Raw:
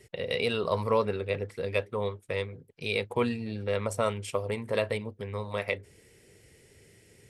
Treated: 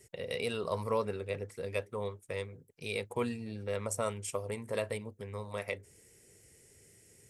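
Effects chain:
high shelf with overshoot 5,200 Hz +7.5 dB, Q 1.5
level −6 dB

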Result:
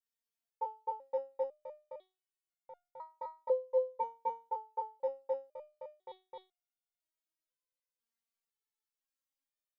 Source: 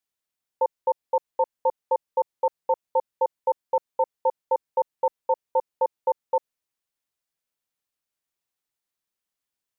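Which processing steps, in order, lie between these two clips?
in parallel at −10.5 dB: soft clipping −23 dBFS, distortion −10 dB
on the sum: frozen spectrum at 0:02.08, 0.57 s
step-sequenced resonator 2 Hz 230–710 Hz
level +2.5 dB

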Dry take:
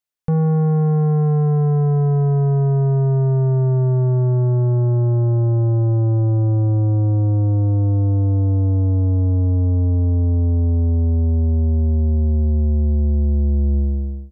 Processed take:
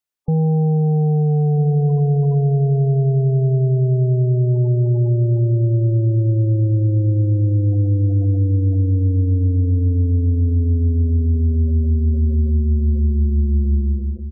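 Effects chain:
slap from a distant wall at 220 metres, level −12 dB
gate on every frequency bin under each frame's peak −25 dB strong

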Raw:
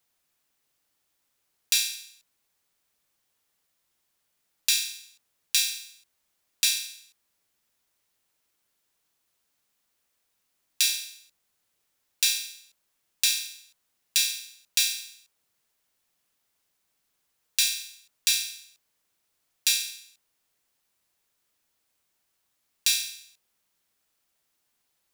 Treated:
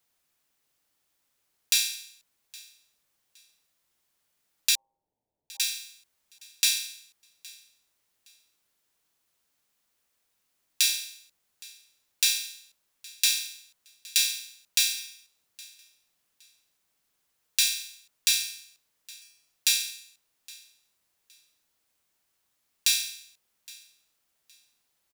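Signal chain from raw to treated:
0:04.75–0:05.60: Butterworth low-pass 930 Hz 96 dB per octave
repeating echo 816 ms, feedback 25%, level −23 dB

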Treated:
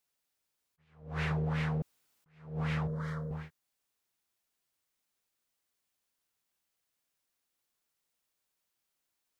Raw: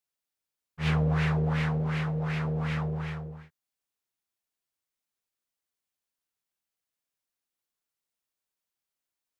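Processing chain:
0:00.85–0:01.31: parametric band 150 Hz −4.5 dB
downward compressor 10 to 1, threshold −34 dBFS, peak gain reduction 11 dB
0:01.82–0:02.26: fill with room tone
0:02.87–0:03.31: phaser with its sweep stopped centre 520 Hz, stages 8
level that may rise only so fast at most 120 dB per second
level +5 dB

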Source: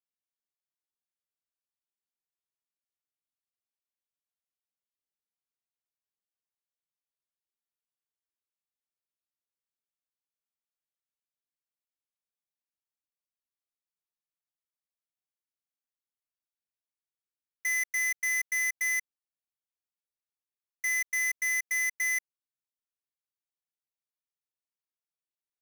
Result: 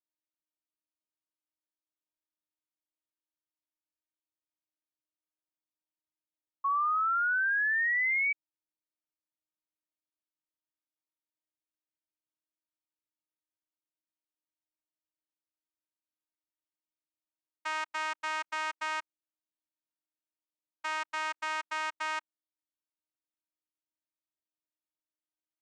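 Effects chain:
channel vocoder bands 4, saw 312 Hz
sound drawn into the spectrogram rise, 0:06.64–0:08.33, 1,100–2,300 Hz −24 dBFS
level −4 dB

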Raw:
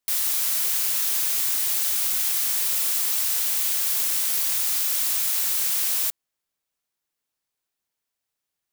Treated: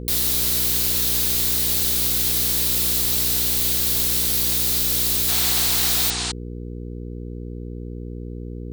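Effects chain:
sound drawn into the spectrogram noise, 0:05.28–0:06.32, 670–9,500 Hz −30 dBFS
graphic EQ with 15 bands 630 Hz +7 dB, 4,000 Hz +8 dB, 16,000 Hz +4 dB
hum with harmonics 60 Hz, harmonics 8, −32 dBFS −4 dB per octave

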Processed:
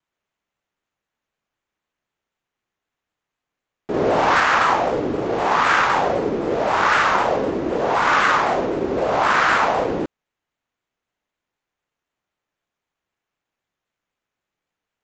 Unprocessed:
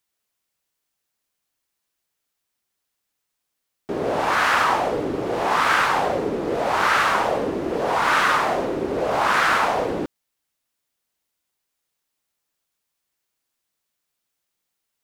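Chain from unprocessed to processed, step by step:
running median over 9 samples
0:03.94–0:04.40: leveller curve on the samples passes 1
downsampling to 16,000 Hz
pitch modulation by a square or saw wave saw down 3.9 Hz, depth 100 cents
level +2.5 dB

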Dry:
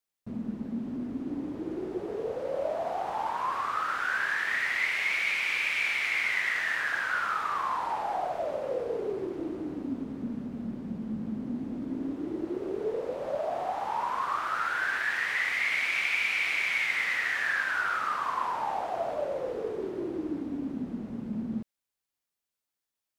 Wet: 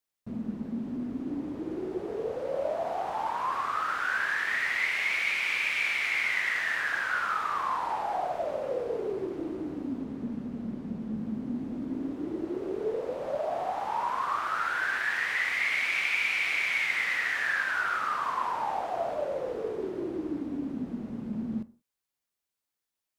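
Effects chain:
convolution reverb, pre-delay 7 ms, DRR 14.5 dB
0:09.98–0:11.17: highs frequency-modulated by the lows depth 0.15 ms

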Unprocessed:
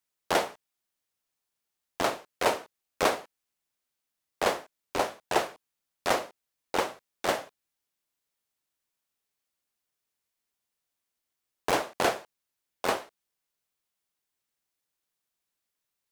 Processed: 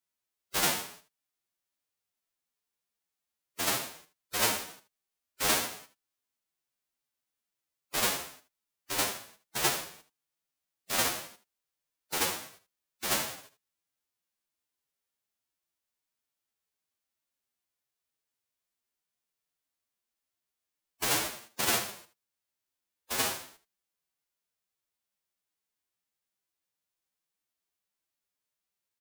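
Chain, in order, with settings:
spectral envelope flattened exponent 0.3
phase-vocoder stretch with locked phases 1.8×
single-tap delay 78 ms −14 dB
level −3 dB

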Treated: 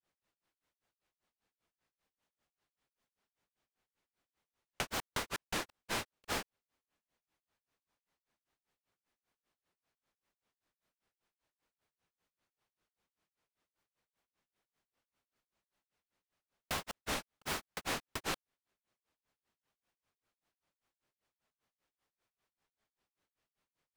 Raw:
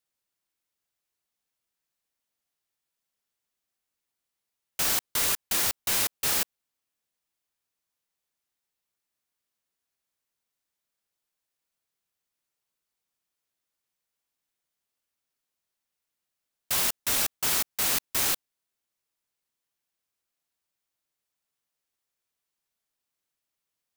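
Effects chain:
granular cloud 170 ms, grains 5.1 per second, spray 17 ms, pitch spread up and down by 0 semitones
downward compressor 3 to 1, threshold −40 dBFS, peak gain reduction 12 dB
low-pass filter 1,600 Hz 6 dB per octave
level +10.5 dB

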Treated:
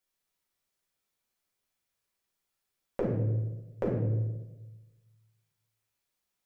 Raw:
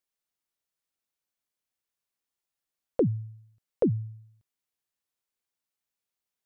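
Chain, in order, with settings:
downward compressor, threshold −33 dBFS, peak gain reduction 12.5 dB
convolution reverb RT60 1.1 s, pre-delay 5 ms, DRR −4.5 dB

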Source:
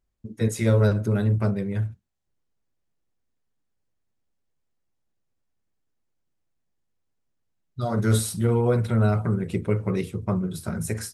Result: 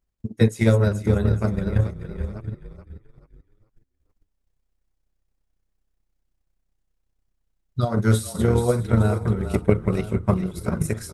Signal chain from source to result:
delay that plays each chunk backwards 637 ms, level −12 dB
echo with shifted repeats 429 ms, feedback 34%, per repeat −32 Hz, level −8.5 dB
transient designer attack +10 dB, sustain −5 dB
level −1 dB

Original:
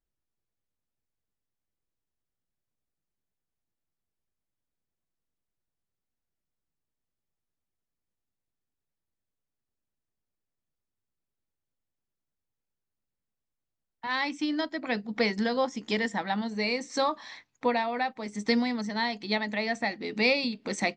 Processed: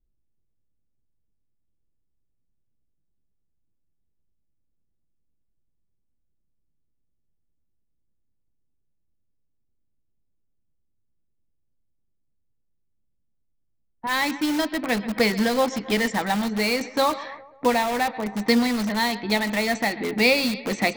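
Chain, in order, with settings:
low-shelf EQ 68 Hz +8 dB
feedback echo with a high-pass in the loop 134 ms, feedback 69%, high-pass 350 Hz, level −18 dB
low-pass that shuts in the quiet parts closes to 300 Hz, open at −24.5 dBFS
in parallel at −7.5 dB: wrap-around overflow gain 28.5 dB
on the sum: one half of a high-frequency compander encoder only
level +5.5 dB

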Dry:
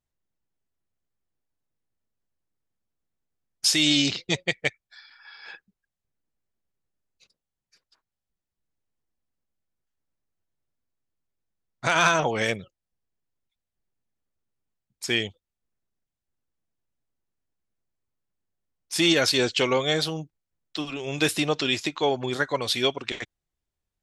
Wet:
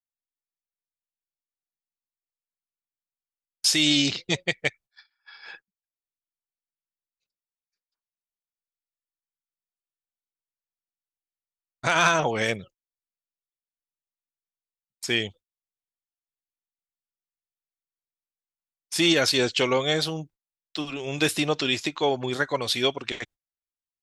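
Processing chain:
noise gate −47 dBFS, range −25 dB

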